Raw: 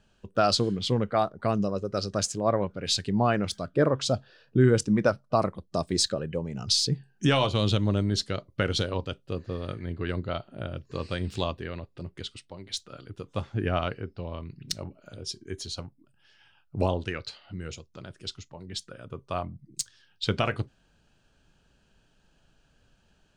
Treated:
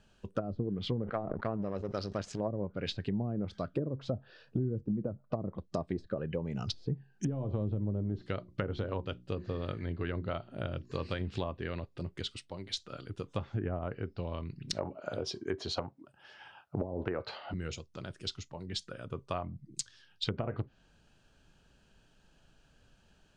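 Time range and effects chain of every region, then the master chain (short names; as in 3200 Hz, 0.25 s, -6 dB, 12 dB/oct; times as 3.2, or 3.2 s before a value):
1.02–2.4 power-law curve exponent 1.4 + sustainer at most 54 dB/s
7.56–11.21 notches 60/120/180/240/300/360 Hz + de-esser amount 70%
14.73–17.54 HPF 61 Hz + bell 760 Hz +15 dB 2.5 oct + compressor 4:1, threshold -20 dBFS
whole clip: treble ducked by the level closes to 320 Hz, closed at -19.5 dBFS; compressor 4:1, threshold -31 dBFS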